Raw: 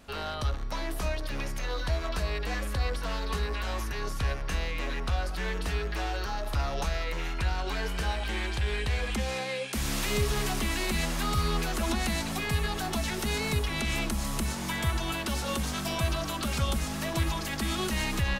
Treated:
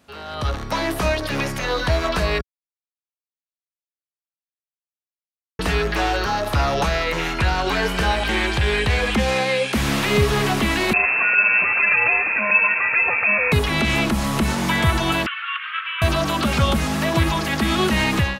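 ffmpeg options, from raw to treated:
-filter_complex "[0:a]asettb=1/sr,asplit=3[s0][s1][s2];[s0]atrim=end=10.934[s3];[s1]atrim=start=10.93:end=13.52,asetpts=PTS-STARTPTS,afade=t=in:d=0.004:c=qsin,afade=t=out:st=2.586:d=0.004:c=qsin,lowpass=f=2300:t=q:w=0.5098,lowpass=f=2300:t=q:w=0.6013,lowpass=f=2300:t=q:w=0.9,lowpass=f=2300:t=q:w=2.563,afreqshift=-2700[s4];[s2]atrim=start=13.516[s5];[s3][s4]acrossfade=d=0.004:c1=hsin:c2=qsin[s6];[s6][s5]acrossfade=d=0.004:c1=qsin:c2=hsin,asettb=1/sr,asplit=3[s7][s8][s9];[s7]atrim=end=15.264[s10];[s8]atrim=start=15.26:end=16.02,asetpts=PTS-STARTPTS,afade=t=in:d=0.004:c=qsin,afade=t=out:st=0.756:d=0.004:c=qsin,asuperpass=centerf=1900:order=12:qfactor=1[s11];[s9]atrim=start=16.016[s12];[s10][s11]acrossfade=d=0.004:c1=hsin:c2=qsin[s13];[s13][s12]acrossfade=d=0.004:c1=qsin:c2=hsin,asplit=3[s14][s15][s16];[s14]atrim=end=2.41,asetpts=PTS-STARTPTS,afade=t=out:st=2.406:d=0.004:c=hsin[s17];[s15]atrim=start=2.41:end=5.59,asetpts=PTS-STARTPTS,volume=0[s18];[s16]atrim=start=5.59,asetpts=PTS-STARTPTS,afade=t=in:d=0.004:c=hsin[s19];[s17][s18][s19]concat=n=3:v=0:a=1,acrossover=split=3700[s20][s21];[s21]acompressor=threshold=0.00501:ratio=4:attack=1:release=60[s22];[s20][s22]amix=inputs=2:normalize=0,highpass=83,dynaudnorm=f=280:g=3:m=6.31,volume=0.75"

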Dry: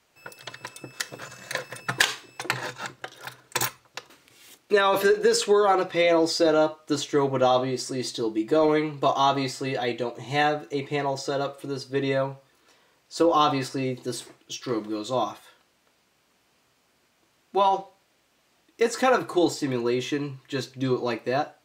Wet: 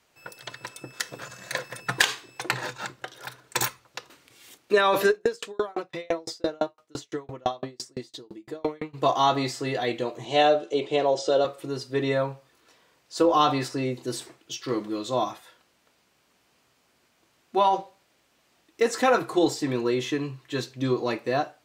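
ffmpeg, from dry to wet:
-filter_complex "[0:a]asplit=3[s0][s1][s2];[s0]afade=t=out:st=5.1:d=0.02[s3];[s1]aeval=exprs='val(0)*pow(10,-38*if(lt(mod(5.9*n/s,1),2*abs(5.9)/1000),1-mod(5.9*n/s,1)/(2*abs(5.9)/1000),(mod(5.9*n/s,1)-2*abs(5.9)/1000)/(1-2*abs(5.9)/1000))/20)':c=same,afade=t=in:st=5.1:d=0.02,afade=t=out:st=8.93:d=0.02[s4];[s2]afade=t=in:st=8.93:d=0.02[s5];[s3][s4][s5]amix=inputs=3:normalize=0,asettb=1/sr,asplit=3[s6][s7][s8];[s6]atrim=end=10.254[s9];[s7]atrim=start=10.25:end=11.45,asetpts=PTS-STARTPTS,afade=t=in:d=0.004:c=qsin,afade=t=out:st=1.196:d=0.004:c=qsin,highpass=200,equalizer=f=380:t=q:w=4:g=5,equalizer=f=580:t=q:w=4:g=10,equalizer=f=1100:t=q:w=4:g=-3,equalizer=f=1900:t=q:w=4:g=-8,equalizer=f=3200:t=q:w=4:g=9,lowpass=f=8900:w=0.5412,lowpass=f=8900:w=1.3066[s10];[s8]atrim=start=11.446[s11];[s9][s10]acrossfade=d=0.004:c1=hsin:c2=qsin[s12];[s12][s11]acrossfade=d=0.004:c1=qsin:c2=hsin"

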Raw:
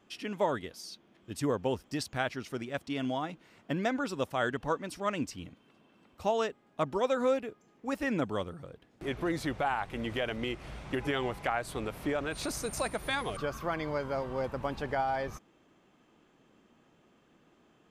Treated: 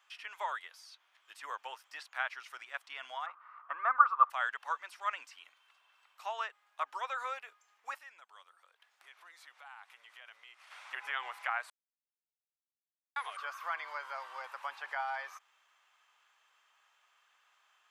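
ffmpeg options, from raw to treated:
-filter_complex "[0:a]asettb=1/sr,asplit=3[s0][s1][s2];[s0]atrim=end=3.264[s3];[s1]atrim=start=3.26:end=4.3,asetpts=PTS-STARTPTS,afade=t=in:d=0.004:c=qsin,afade=t=out:st=1.036:d=0.004:c=qsin,lowpass=f=1200:t=q:w=14[s4];[s2]atrim=start=4.296[s5];[s3][s4]acrossfade=d=0.004:c1=hsin:c2=qsin[s6];[s6][s5]acrossfade=d=0.004:c1=qsin:c2=hsin,asplit=3[s7][s8][s9];[s7]afade=t=out:st=7.97:d=0.02[s10];[s8]acompressor=threshold=0.002:ratio=2.5:attack=3.2:release=140:knee=1:detection=peak,afade=t=in:st=7.97:d=0.02,afade=t=out:st=10.7:d=0.02[s11];[s9]afade=t=in:st=10.7:d=0.02[s12];[s10][s11][s12]amix=inputs=3:normalize=0,asplit=3[s13][s14][s15];[s13]atrim=end=11.7,asetpts=PTS-STARTPTS,afade=t=out:st=11.696:d=0.004:c=hsin[s16];[s14]atrim=start=11.7:end=13.16,asetpts=PTS-STARTPTS,volume=0[s17];[s15]atrim=start=13.16,asetpts=PTS-STARTPTS,afade=t=in:d=0.004:c=hsin[s18];[s16][s17][s18]concat=n=3:v=0:a=1,acrossover=split=2700[s19][s20];[s20]acompressor=threshold=0.00126:ratio=4:attack=1:release=60[s21];[s19][s21]amix=inputs=2:normalize=0,highpass=f=1000:w=0.5412,highpass=f=1000:w=1.3066,volume=1.19"

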